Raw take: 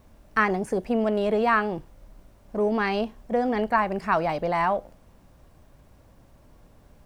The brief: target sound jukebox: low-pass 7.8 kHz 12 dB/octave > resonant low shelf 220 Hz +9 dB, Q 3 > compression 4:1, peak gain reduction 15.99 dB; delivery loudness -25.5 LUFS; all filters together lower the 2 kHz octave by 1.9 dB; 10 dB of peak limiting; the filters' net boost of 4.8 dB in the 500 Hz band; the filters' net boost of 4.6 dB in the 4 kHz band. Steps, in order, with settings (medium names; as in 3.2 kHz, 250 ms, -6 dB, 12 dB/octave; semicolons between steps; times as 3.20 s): peaking EQ 500 Hz +9 dB; peaking EQ 2 kHz -4.5 dB; peaking EQ 4 kHz +8.5 dB; peak limiter -16.5 dBFS; low-pass 7.8 kHz 12 dB/octave; resonant low shelf 220 Hz +9 dB, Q 3; compression 4:1, threshold -37 dBFS; trim +14 dB